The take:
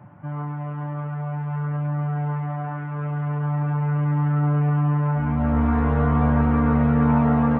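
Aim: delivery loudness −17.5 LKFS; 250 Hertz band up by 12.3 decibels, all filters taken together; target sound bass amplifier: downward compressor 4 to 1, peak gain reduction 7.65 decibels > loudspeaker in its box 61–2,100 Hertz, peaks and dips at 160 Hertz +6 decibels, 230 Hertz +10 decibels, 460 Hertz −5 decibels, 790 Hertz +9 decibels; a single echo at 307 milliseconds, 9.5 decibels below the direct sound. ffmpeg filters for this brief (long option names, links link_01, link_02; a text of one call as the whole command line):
ffmpeg -i in.wav -af "equalizer=frequency=250:width_type=o:gain=3.5,aecho=1:1:307:0.335,acompressor=threshold=-21dB:ratio=4,highpass=frequency=61:width=0.5412,highpass=frequency=61:width=1.3066,equalizer=frequency=160:width_type=q:width=4:gain=6,equalizer=frequency=230:width_type=q:width=4:gain=10,equalizer=frequency=460:width_type=q:width=4:gain=-5,equalizer=frequency=790:width_type=q:width=4:gain=9,lowpass=frequency=2100:width=0.5412,lowpass=frequency=2100:width=1.3066,volume=1.5dB" out.wav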